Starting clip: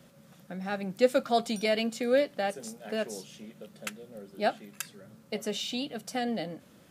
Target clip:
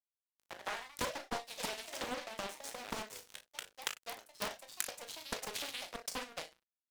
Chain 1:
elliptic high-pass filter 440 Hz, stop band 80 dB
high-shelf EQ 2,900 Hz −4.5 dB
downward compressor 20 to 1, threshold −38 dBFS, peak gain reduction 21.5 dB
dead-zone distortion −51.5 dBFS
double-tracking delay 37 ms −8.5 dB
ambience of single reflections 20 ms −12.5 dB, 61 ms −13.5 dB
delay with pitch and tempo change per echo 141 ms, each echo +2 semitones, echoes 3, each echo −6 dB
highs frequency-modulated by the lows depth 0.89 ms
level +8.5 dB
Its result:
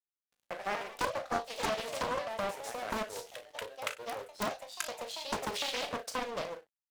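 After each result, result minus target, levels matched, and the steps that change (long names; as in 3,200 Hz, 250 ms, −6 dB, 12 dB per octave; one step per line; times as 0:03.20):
dead-zone distortion: distortion −11 dB; 8,000 Hz band −5.0 dB
change: dead-zone distortion −40 dBFS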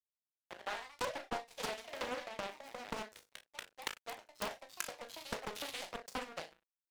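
8,000 Hz band −4.0 dB
change: high-shelf EQ 2,900 Hz +6 dB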